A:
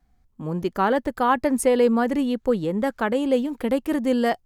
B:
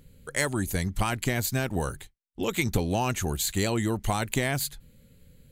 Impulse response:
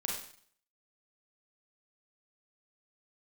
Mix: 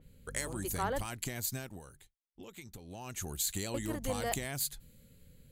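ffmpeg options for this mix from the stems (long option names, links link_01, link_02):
-filter_complex "[0:a]highpass=360,aeval=exprs='val(0)+0.0224*(sin(2*PI*50*n/s)+sin(2*PI*2*50*n/s)/2+sin(2*PI*3*50*n/s)/3+sin(2*PI*4*50*n/s)/4+sin(2*PI*5*50*n/s)/5)':channel_layout=same,volume=-13dB,asplit=3[link_01][link_02][link_03];[link_01]atrim=end=1.06,asetpts=PTS-STARTPTS,afade=type=out:start_time=1.056:duration=0.004:curve=hsin[link_04];[link_02]atrim=start=1.06:end=3.74,asetpts=PTS-STARTPTS,volume=0[link_05];[link_03]atrim=start=3.74,asetpts=PTS-STARTPTS,afade=type=in:duration=0.004:curve=hsin[link_06];[link_04][link_05][link_06]concat=n=3:v=0:a=1[link_07];[1:a]acompressor=threshold=-31dB:ratio=6,volume=6.5dB,afade=type=out:start_time=1.53:duration=0.29:silence=0.298538,afade=type=in:start_time=2.8:duration=0.69:silence=0.266073,asplit=2[link_08][link_09];[link_09]apad=whole_len=196485[link_10];[link_07][link_10]sidechaingate=range=-33dB:threshold=-51dB:ratio=16:detection=peak[link_11];[link_11][link_08]amix=inputs=2:normalize=0,adynamicequalizer=threshold=0.00141:dfrequency=4100:dqfactor=0.7:tfrequency=4100:tqfactor=0.7:attack=5:release=100:ratio=0.375:range=3.5:mode=boostabove:tftype=highshelf"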